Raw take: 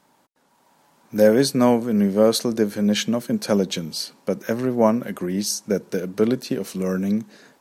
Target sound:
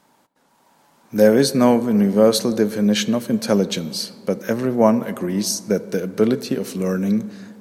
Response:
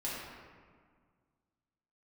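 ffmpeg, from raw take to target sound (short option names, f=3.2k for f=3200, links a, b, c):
-filter_complex "[0:a]asplit=2[a][b];[1:a]atrim=start_sample=2205,asetrate=35721,aresample=44100[c];[b][c]afir=irnorm=-1:irlink=0,volume=-19dB[d];[a][d]amix=inputs=2:normalize=0,volume=1.5dB"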